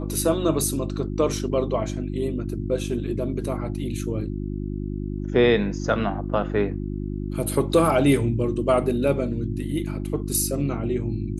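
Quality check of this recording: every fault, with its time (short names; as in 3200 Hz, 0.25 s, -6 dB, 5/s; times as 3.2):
hum 50 Hz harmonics 7 -29 dBFS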